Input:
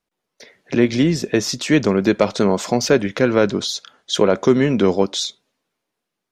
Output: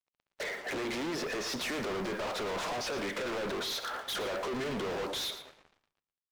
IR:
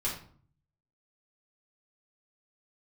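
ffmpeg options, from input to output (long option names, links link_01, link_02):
-filter_complex "[0:a]highpass=470,aemphasis=mode=reproduction:type=bsi,asplit=2[link_01][link_02];[link_02]highpass=frequency=720:poles=1,volume=33dB,asoftclip=type=tanh:threshold=-3.5dB[link_03];[link_01][link_03]amix=inputs=2:normalize=0,lowpass=frequency=1300:poles=1,volume=-6dB,acompressor=threshold=-27dB:ratio=4,acrusher=bits=7:mix=0:aa=0.5,highshelf=frequency=6300:gain=-6,volume=34dB,asoftclip=hard,volume=-34dB,aecho=1:1:115:0.251,asplit=2[link_04][link_05];[1:a]atrim=start_sample=2205,adelay=136[link_06];[link_05][link_06]afir=irnorm=-1:irlink=0,volume=-27.5dB[link_07];[link_04][link_07]amix=inputs=2:normalize=0"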